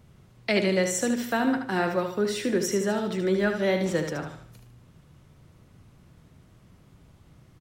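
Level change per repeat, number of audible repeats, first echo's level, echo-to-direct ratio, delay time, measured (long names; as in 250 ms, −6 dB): −8.5 dB, 4, −7.0 dB, −6.5 dB, 75 ms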